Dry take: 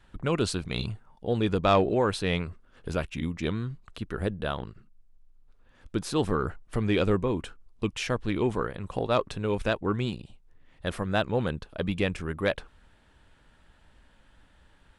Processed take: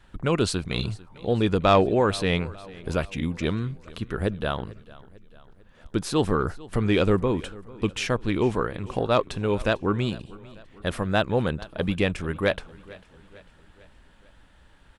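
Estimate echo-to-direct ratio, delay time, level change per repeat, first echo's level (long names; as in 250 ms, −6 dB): −19.5 dB, 447 ms, −5.5 dB, −21.0 dB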